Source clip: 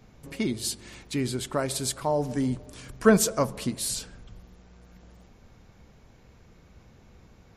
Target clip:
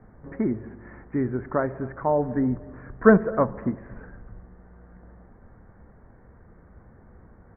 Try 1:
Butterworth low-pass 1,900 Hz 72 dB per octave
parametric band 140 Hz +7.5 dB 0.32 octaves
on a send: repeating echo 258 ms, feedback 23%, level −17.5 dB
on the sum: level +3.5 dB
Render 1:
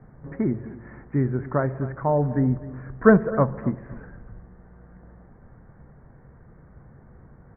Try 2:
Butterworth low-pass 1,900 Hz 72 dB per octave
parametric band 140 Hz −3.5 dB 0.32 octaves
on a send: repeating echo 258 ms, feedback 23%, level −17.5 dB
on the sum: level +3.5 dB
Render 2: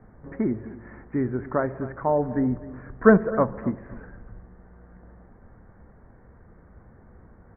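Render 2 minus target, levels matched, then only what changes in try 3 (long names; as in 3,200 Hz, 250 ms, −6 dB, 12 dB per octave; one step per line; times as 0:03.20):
echo-to-direct +6.5 dB
change: repeating echo 258 ms, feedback 23%, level −24 dB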